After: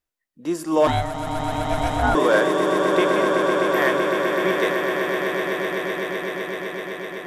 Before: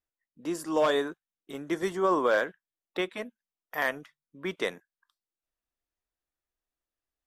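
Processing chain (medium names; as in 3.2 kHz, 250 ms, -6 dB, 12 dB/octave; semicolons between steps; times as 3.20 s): echo with a slow build-up 127 ms, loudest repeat 8, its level -8 dB; harmonic-percussive split percussive -5 dB; 0.87–2.15 s: ring modulator 320 Hz; trim +8 dB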